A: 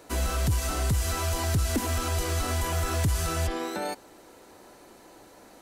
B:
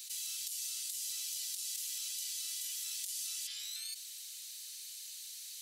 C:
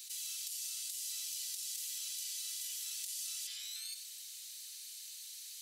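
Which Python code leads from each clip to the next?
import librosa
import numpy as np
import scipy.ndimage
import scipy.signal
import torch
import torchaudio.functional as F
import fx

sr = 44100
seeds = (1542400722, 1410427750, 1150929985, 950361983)

y1 = scipy.signal.sosfilt(scipy.signal.cheby2(4, 70, 760.0, 'highpass', fs=sr, output='sos'), x)
y1 = fx.env_flatten(y1, sr, amount_pct=70)
y1 = F.gain(torch.from_numpy(y1), -4.5).numpy()
y2 = y1 + 10.0 ** (-9.0 / 20.0) * np.pad(y1, (int(90 * sr / 1000.0), 0))[:len(y1)]
y2 = F.gain(torch.from_numpy(y2), -2.0).numpy()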